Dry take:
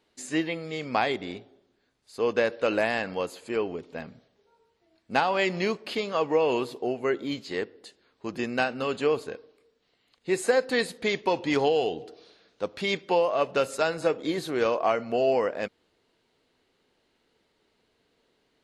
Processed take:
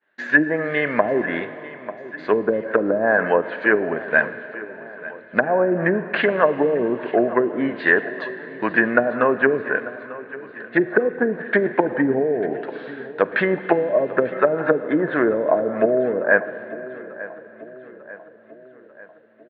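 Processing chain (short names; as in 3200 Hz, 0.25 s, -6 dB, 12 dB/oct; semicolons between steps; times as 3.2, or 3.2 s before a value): treble ducked by the level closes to 600 Hz, closed at -19.5 dBFS; expander -60 dBFS; treble ducked by the level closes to 330 Hz, closed at -22.5 dBFS; bell 1700 Hz +14 dB 0.63 oct; wide varispeed 0.956×; speaker cabinet 160–3300 Hz, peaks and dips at 620 Hz +9 dB, 1000 Hz +5 dB, 1700 Hz +8 dB; feedback echo 0.894 s, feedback 54%, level -17.5 dB; on a send at -14 dB: reverb RT60 4.2 s, pre-delay 37 ms; on the sum: maximiser +10 dB; gain -1 dB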